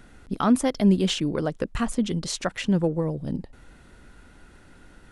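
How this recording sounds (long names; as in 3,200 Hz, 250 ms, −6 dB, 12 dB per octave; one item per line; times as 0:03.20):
background noise floor −52 dBFS
spectral slope −5.5 dB per octave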